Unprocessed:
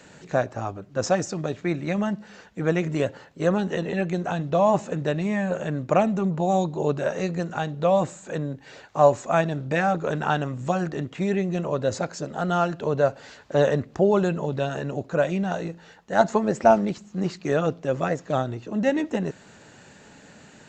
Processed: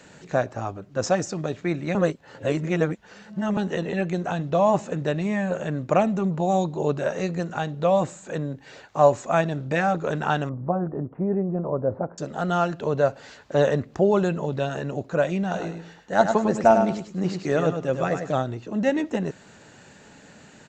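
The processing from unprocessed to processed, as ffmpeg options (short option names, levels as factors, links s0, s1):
-filter_complex "[0:a]asettb=1/sr,asplit=3[s0][s1][s2];[s0]atrim=end=10.494[s3];[s1]atrim=start=10.49:end=12.18,asetpts=PTS-STARTPTS,afade=t=in:d=0.004:c=qsin,afade=t=out:st=1.686:d=0.004:c=qsin,lowpass=f=1100:w=0.5412,lowpass=f=1100:w=1.3066[s4];[s2]atrim=start=12.176[s5];[s3][s4]acrossfade=d=0.004:c1=hsin:c2=qsin[s6];[s6][s5]acrossfade=d=0.004:c1=qsin:c2=hsin,asplit=3[s7][s8][s9];[s7]afade=t=out:st=15.53:d=0.02[s10];[s8]aecho=1:1:101|202|303:0.447|0.107|0.0257,afade=t=in:st=15.53:d=0.02,afade=t=out:st=18.32:d=0.02[s11];[s9]afade=t=in:st=18.32:d=0.02[s12];[s10][s11][s12]amix=inputs=3:normalize=0,asplit=3[s13][s14][s15];[s13]atrim=end=1.952[s16];[s14]atrim=start=1.948:end=3.572,asetpts=PTS-STARTPTS,areverse[s17];[s15]atrim=start=3.568[s18];[s16][s17]acrossfade=d=0.004:c1=hsin:c2=hsin[s19];[s19][s18]acrossfade=d=0.004:c1=hsin:c2=hsin"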